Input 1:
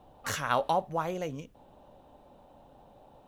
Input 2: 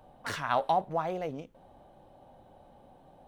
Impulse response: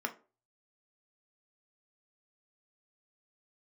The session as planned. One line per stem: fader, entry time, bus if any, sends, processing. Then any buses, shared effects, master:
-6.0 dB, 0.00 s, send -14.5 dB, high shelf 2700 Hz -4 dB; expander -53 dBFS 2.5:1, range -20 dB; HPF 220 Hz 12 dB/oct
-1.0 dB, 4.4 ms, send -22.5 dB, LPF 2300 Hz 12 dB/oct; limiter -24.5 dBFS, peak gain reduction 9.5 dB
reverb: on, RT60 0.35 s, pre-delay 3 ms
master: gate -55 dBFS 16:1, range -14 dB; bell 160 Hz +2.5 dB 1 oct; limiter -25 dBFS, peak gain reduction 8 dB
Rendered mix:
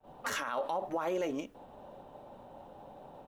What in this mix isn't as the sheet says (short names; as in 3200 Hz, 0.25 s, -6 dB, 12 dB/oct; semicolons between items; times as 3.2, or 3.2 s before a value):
stem 1 -6.0 dB -> +5.0 dB; stem 2: polarity flipped